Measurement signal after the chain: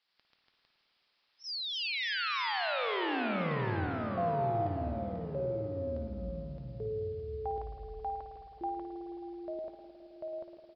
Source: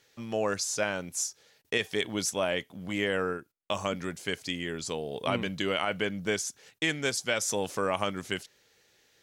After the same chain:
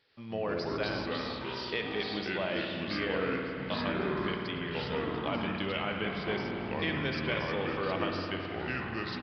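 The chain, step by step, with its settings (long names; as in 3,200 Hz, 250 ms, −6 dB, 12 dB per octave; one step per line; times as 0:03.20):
background noise blue −63 dBFS
delay with pitch and tempo change per echo 86 ms, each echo −4 semitones, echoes 3
on a send: repeating echo 546 ms, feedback 55%, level −19.5 dB
on the sum: spring reverb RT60 3.1 s, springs 53 ms, chirp 60 ms, DRR 2.5 dB
downsampling to 11,025 Hz
level −6 dB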